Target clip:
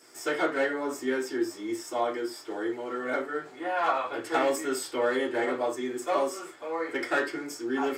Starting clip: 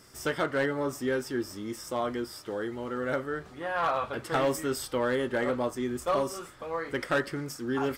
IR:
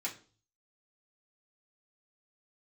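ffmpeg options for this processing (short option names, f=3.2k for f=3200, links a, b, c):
-filter_complex "[0:a]lowshelf=f=260:t=q:w=1.5:g=-8.5[a];[1:a]atrim=start_sample=2205,atrim=end_sample=4410[b];[a][b]afir=irnorm=-1:irlink=0"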